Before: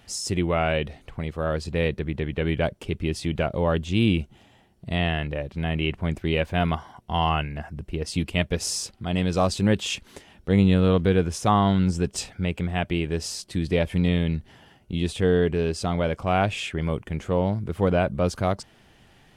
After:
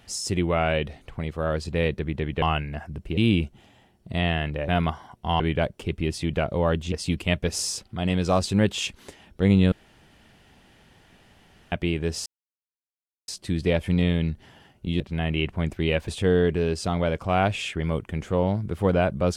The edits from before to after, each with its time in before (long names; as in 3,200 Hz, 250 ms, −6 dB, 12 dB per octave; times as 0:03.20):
0:02.42–0:03.94: swap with 0:07.25–0:08.00
0:05.45–0:06.53: move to 0:15.06
0:10.80–0:12.80: fill with room tone
0:13.34: splice in silence 1.02 s